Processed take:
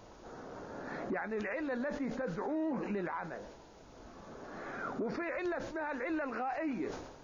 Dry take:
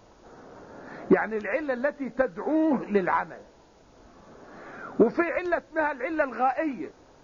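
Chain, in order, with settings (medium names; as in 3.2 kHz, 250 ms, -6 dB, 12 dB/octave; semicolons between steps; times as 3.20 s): compression 2.5:1, threshold -30 dBFS, peak gain reduction 11 dB; peak limiter -29 dBFS, peak gain reduction 11 dB; decay stretcher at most 56 dB/s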